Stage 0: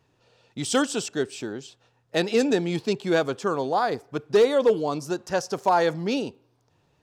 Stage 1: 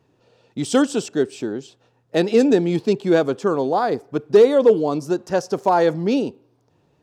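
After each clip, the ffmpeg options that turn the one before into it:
-af "equalizer=f=300:t=o:w=2.7:g=8.5,volume=-1dB"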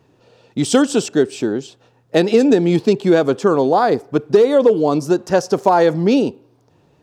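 -af "acompressor=threshold=-15dB:ratio=6,volume=6.5dB"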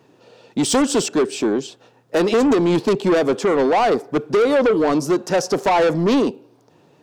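-af "highpass=170,asoftclip=type=tanh:threshold=-16dB,volume=3.5dB"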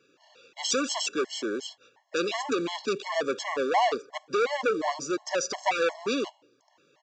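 -af "highpass=f=1.3k:p=1,aresample=16000,acrusher=bits=6:mode=log:mix=0:aa=0.000001,aresample=44100,afftfilt=real='re*gt(sin(2*PI*2.8*pts/sr)*(1-2*mod(floor(b*sr/1024/560),2)),0)':imag='im*gt(sin(2*PI*2.8*pts/sr)*(1-2*mod(floor(b*sr/1024/560),2)),0)':win_size=1024:overlap=0.75"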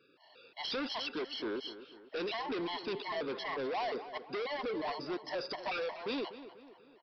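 -filter_complex "[0:a]aresample=11025,asoftclip=type=tanh:threshold=-30.5dB,aresample=44100,asplit=2[a][b];[b]adelay=245,lowpass=f=3k:p=1,volume=-13dB,asplit=2[c][d];[d]adelay=245,lowpass=f=3k:p=1,volume=0.49,asplit=2[e][f];[f]adelay=245,lowpass=f=3k:p=1,volume=0.49,asplit=2[g][h];[h]adelay=245,lowpass=f=3k:p=1,volume=0.49,asplit=2[i][j];[j]adelay=245,lowpass=f=3k:p=1,volume=0.49[k];[a][c][e][g][i][k]amix=inputs=6:normalize=0,volume=-2.5dB"

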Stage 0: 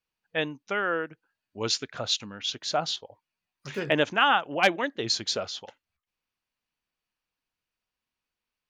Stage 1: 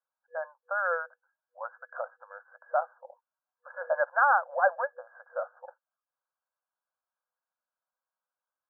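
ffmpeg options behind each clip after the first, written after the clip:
-af "afftfilt=real='re*between(b*sr/4096,490,1700)':imag='im*between(b*sr/4096,490,1700)':win_size=4096:overlap=0.75"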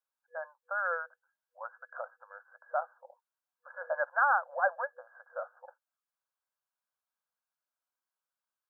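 -af "tiltshelf=f=970:g=-3.5,volume=-4dB"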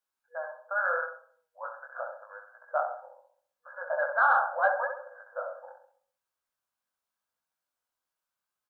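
-filter_complex "[0:a]asplit=2[a][b];[b]adelay=66,lowpass=f=1.3k:p=1,volume=-4dB,asplit=2[c][d];[d]adelay=66,lowpass=f=1.3k:p=1,volume=0.52,asplit=2[e][f];[f]adelay=66,lowpass=f=1.3k:p=1,volume=0.52,asplit=2[g][h];[h]adelay=66,lowpass=f=1.3k:p=1,volume=0.52,asplit=2[i][j];[j]adelay=66,lowpass=f=1.3k:p=1,volume=0.52,asplit=2[k][l];[l]adelay=66,lowpass=f=1.3k:p=1,volume=0.52,asplit=2[m][n];[n]adelay=66,lowpass=f=1.3k:p=1,volume=0.52[o];[a][c][e][g][i][k][m][o]amix=inputs=8:normalize=0,acontrast=53,flanger=delay=17:depth=6.8:speed=0.8"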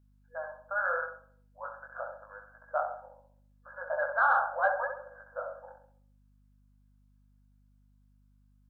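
-af "aeval=exprs='val(0)+0.000891*(sin(2*PI*50*n/s)+sin(2*PI*2*50*n/s)/2+sin(2*PI*3*50*n/s)/3+sin(2*PI*4*50*n/s)/4+sin(2*PI*5*50*n/s)/5)':c=same,volume=-2dB"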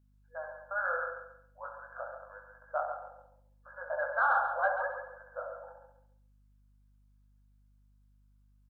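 -af "aecho=1:1:138|276|414:0.398|0.111|0.0312,volume=-2.5dB"

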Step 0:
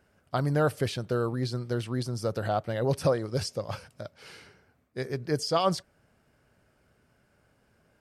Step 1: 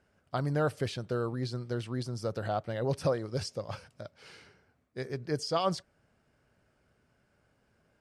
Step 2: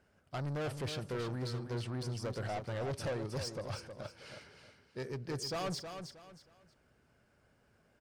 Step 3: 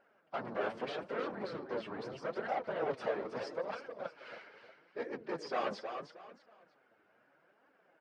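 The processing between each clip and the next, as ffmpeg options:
-af "lowpass=9.2k,volume=-4dB"
-af "asoftclip=type=tanh:threshold=-34.5dB,aecho=1:1:316|632|948:0.398|0.115|0.0335"
-af "afftfilt=real='hypot(re,im)*cos(2*PI*random(0))':imag='hypot(re,im)*sin(2*PI*random(1))':win_size=512:overlap=0.75,flanger=delay=3.4:depth=6.6:regen=37:speed=0.78:shape=triangular,highpass=410,lowpass=2.2k,volume=14.5dB"

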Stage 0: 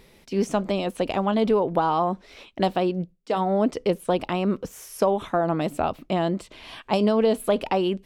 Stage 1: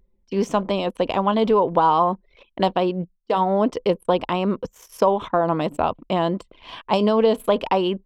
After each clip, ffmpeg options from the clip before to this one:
-af "anlmdn=0.251,equalizer=f=500:t=o:w=0.33:g=4,equalizer=f=1k:t=o:w=0.33:g=9,equalizer=f=3.15k:t=o:w=0.33:g=4,equalizer=f=10k:t=o:w=0.33:g=-10,volume=1dB"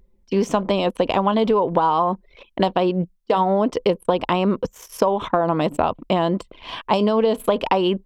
-af "acompressor=threshold=-20dB:ratio=6,volume=5.5dB"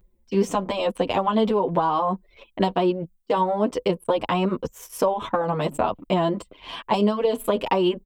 -filter_complex "[0:a]aexciter=amount=1.7:drive=6.5:freq=7.5k,asplit=2[a][b];[b]adelay=8.1,afreqshift=-1.8[c];[a][c]amix=inputs=2:normalize=1"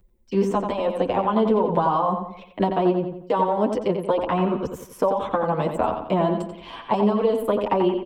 -filter_complex "[0:a]asplit=2[a][b];[b]adelay=88,lowpass=f=2.9k:p=1,volume=-6dB,asplit=2[c][d];[d]adelay=88,lowpass=f=2.9k:p=1,volume=0.45,asplit=2[e][f];[f]adelay=88,lowpass=f=2.9k:p=1,volume=0.45,asplit=2[g][h];[h]adelay=88,lowpass=f=2.9k:p=1,volume=0.45,asplit=2[i][j];[j]adelay=88,lowpass=f=2.9k:p=1,volume=0.45[k];[a][c][e][g][i][k]amix=inputs=6:normalize=0,acrossover=split=400|750|2000[l][m][n][o];[o]acompressor=threshold=-45dB:ratio=6[p];[l][m][n][p]amix=inputs=4:normalize=0"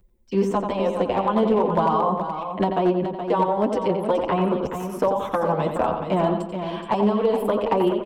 -filter_complex "[0:a]asoftclip=type=hard:threshold=-12dB,asplit=2[a][b];[b]aecho=0:1:423:0.376[c];[a][c]amix=inputs=2:normalize=0"

